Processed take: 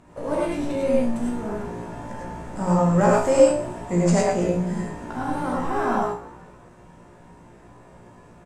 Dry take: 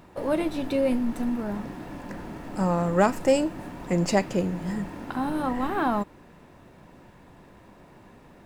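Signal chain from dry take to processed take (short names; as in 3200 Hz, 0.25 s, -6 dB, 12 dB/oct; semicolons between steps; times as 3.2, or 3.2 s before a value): resonant high shelf 5700 Hz +11.5 dB, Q 1.5; resonator 59 Hz, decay 0.36 s, harmonics all, mix 90%; in parallel at -11 dB: sample-rate reducer 6700 Hz; on the sum: air absorption 85 m; on a send: frequency-shifting echo 0.172 s, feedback 46%, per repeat +62 Hz, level -19.5 dB; on the sum: non-linear reverb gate 0.13 s rising, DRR -3 dB; gain +4 dB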